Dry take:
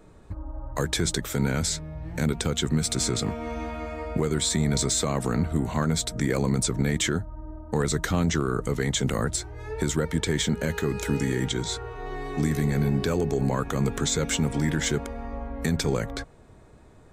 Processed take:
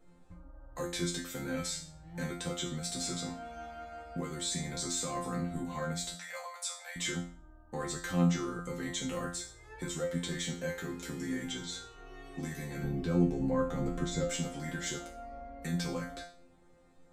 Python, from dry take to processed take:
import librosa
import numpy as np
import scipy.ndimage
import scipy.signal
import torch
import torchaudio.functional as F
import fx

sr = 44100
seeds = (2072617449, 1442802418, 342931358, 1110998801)

y = fx.steep_highpass(x, sr, hz=570.0, slope=72, at=(6.14, 6.95), fade=0.02)
y = fx.tilt_eq(y, sr, slope=-2.5, at=(12.83, 14.3))
y = fx.resonator_bank(y, sr, root=53, chord='fifth', decay_s=0.43)
y = F.gain(torch.from_numpy(y), 7.5).numpy()